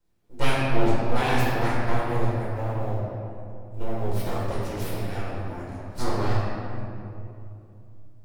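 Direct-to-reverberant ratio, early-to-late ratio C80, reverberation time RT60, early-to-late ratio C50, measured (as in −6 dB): −9.5 dB, −0.5 dB, 2.7 s, −2.5 dB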